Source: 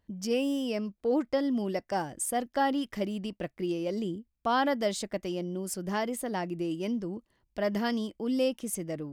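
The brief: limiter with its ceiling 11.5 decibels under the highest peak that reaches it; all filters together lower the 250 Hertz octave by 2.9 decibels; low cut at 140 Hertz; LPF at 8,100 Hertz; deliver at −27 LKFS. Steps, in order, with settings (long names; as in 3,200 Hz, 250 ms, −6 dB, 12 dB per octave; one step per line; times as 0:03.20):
high-pass filter 140 Hz
low-pass filter 8,100 Hz
parametric band 250 Hz −3 dB
level +9.5 dB
brickwall limiter −17.5 dBFS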